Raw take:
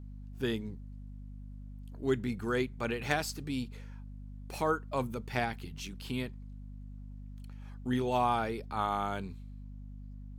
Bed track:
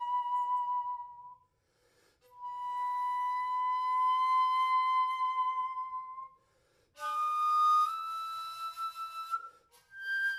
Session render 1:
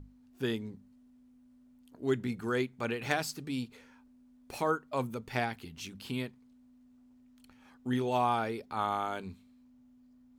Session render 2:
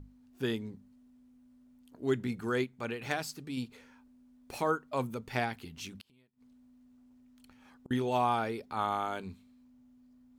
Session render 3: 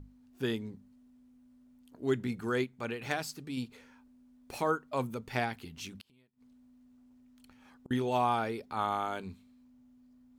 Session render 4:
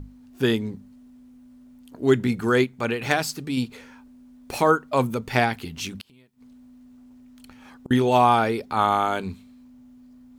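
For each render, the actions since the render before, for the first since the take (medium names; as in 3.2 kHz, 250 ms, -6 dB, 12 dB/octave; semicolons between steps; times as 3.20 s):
hum notches 50/100/150/200 Hz
2.64–3.57 s: gain -3 dB; 5.93–7.91 s: inverted gate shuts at -33 dBFS, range -31 dB
no audible change
trim +11.5 dB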